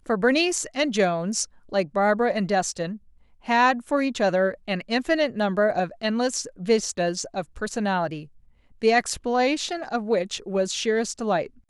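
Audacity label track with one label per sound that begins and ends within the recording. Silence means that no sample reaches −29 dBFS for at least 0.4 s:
3.480000	8.200000	sound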